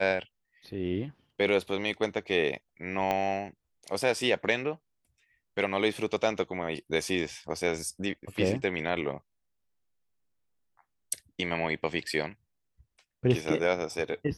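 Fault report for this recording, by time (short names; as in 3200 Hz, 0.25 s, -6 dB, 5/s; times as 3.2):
3.11 pop -15 dBFS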